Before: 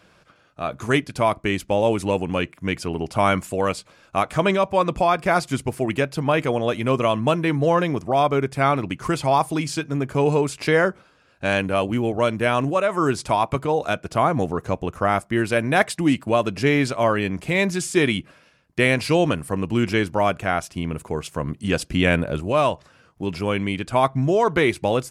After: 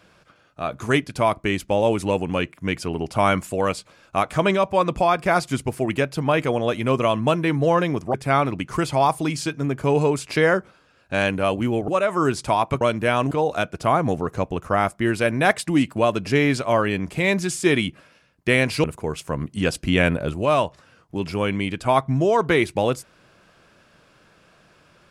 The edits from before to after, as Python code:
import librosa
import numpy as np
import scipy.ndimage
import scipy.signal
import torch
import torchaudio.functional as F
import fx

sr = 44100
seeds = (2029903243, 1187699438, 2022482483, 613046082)

y = fx.edit(x, sr, fx.cut(start_s=8.14, length_s=0.31),
    fx.move(start_s=12.19, length_s=0.5, to_s=13.62),
    fx.cut(start_s=19.15, length_s=1.76), tone=tone)